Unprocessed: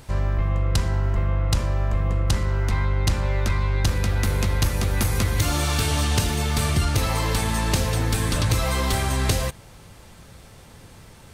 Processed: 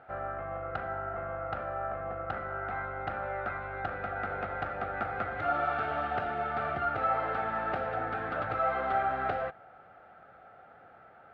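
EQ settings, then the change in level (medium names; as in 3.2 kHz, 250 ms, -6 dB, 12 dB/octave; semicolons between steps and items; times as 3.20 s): two resonant band-passes 1 kHz, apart 0.85 oct; distance through air 490 m; +8.5 dB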